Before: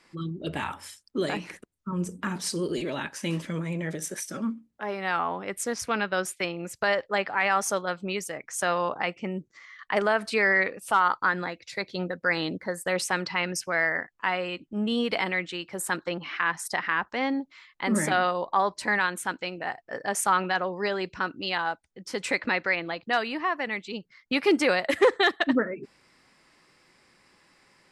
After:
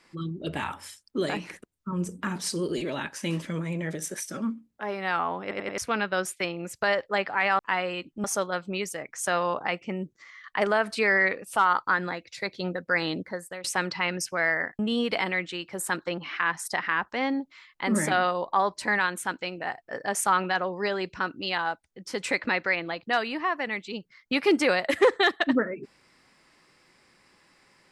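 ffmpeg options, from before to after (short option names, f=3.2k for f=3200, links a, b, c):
-filter_complex "[0:a]asplit=9[a][b][c][d][e][f][g][h][i];[a]atrim=end=5.512[j];[b]atrim=start=5.418:end=5.512[k];[c]atrim=start=5.418:end=5.512[l];[d]atrim=start=5.418:end=5.512[m];[e]atrim=start=5.778:end=7.592[n];[f]atrim=start=14.138:end=14.792[o];[g]atrim=start=7.588:end=12.99,asetpts=PTS-STARTPTS,afade=t=out:st=4.962:d=0.44:silence=0.112202[p];[h]atrim=start=12.99:end=14.142,asetpts=PTS-STARTPTS,afade=t=in:d=0.004:c=hsin:silence=0.112202[q];[i]atrim=start=14.788[r];[j][k]acrossfade=d=0.004:c1=hsin:c2=hsin[s];[s][l]acrossfade=d=0.004:c1=hsin:c2=hsin[t];[t][m]acrossfade=d=0.004:c1=hsin:c2=hsin[u];[u][n]acrossfade=d=0.004:c1=hsin:c2=hsin[v];[v][o]acrossfade=d=0.004:c1=hsin:c2=hsin[w];[p][q]concat=n=2:v=0:a=1[x];[w][x]acrossfade=d=0.004:c1=hsin:c2=hsin[y];[y][r]acrossfade=d=0.004:c1=hsin:c2=hsin"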